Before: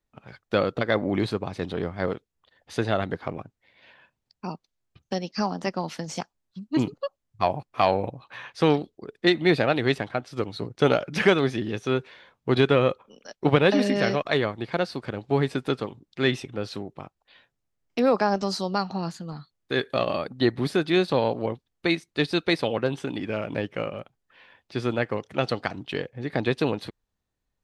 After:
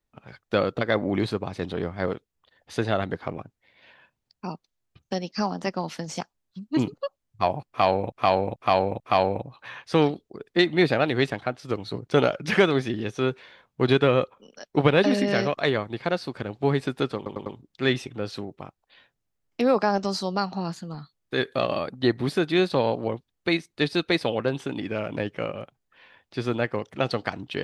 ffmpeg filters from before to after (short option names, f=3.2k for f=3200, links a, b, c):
-filter_complex "[0:a]asplit=7[a][b][c][d][e][f][g];[a]atrim=end=8.122[h];[b]atrim=start=7.678:end=8.122[i];[c]atrim=start=7.678:end=8.122[j];[d]atrim=start=7.678:end=15.942[k];[e]atrim=start=15.838:end=15.942[l];[f]atrim=start=15.838:end=15.942[m];[g]atrim=start=15.838[n];[h][i]acrossfade=d=0.004:c1=hsin:c2=hsin[o];[o][j]acrossfade=d=0.004:c1=hsin:c2=hsin[p];[p][k]acrossfade=d=0.004:c1=hsin:c2=hsin[q];[q][l]acrossfade=d=0.004:c1=hsin:c2=hsin[r];[r][m]acrossfade=d=0.004:c1=hsin:c2=hsin[s];[s][n]acrossfade=d=0.004:c1=hsin:c2=hsin"